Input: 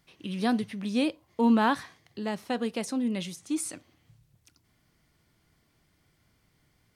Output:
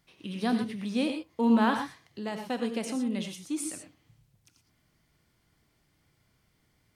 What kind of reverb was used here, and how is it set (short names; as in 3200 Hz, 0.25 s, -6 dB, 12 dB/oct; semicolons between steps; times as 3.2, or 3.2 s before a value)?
non-linear reverb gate 0.14 s rising, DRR 5.5 dB; gain -2.5 dB